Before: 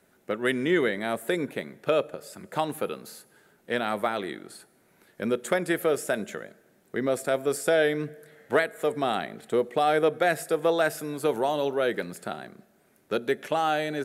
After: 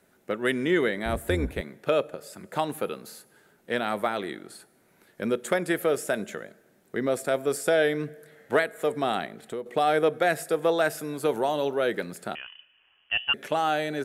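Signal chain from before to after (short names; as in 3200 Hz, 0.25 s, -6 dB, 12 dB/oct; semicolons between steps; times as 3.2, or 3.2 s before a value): 1.05–1.61 octaver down 2 oct, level +3 dB; 9.26–9.66 compressor 2:1, threshold -39 dBFS, peak gain reduction 11 dB; 12.35–13.34 inverted band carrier 3200 Hz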